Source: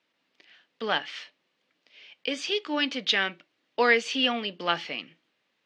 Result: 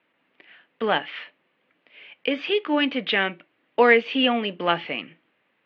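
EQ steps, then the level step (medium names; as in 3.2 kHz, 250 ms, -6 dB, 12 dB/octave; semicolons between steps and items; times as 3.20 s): low-pass 2.7 kHz 24 dB/octave; dynamic bell 1.5 kHz, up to -5 dB, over -38 dBFS, Q 1.2; +7.5 dB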